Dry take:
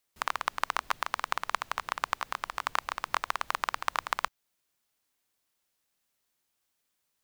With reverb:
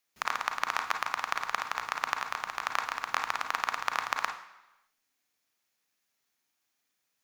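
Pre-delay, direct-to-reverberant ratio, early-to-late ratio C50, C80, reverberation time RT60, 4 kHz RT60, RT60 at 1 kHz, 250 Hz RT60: 33 ms, 5.5 dB, 8.5 dB, 13.0 dB, 1.0 s, 0.95 s, 1.0 s, 0.95 s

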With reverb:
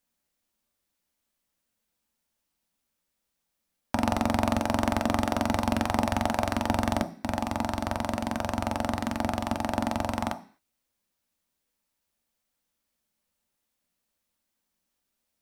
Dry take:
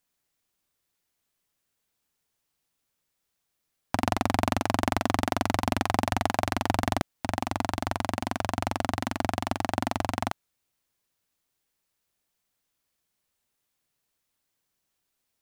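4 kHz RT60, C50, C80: n/a, 15.5 dB, 19.5 dB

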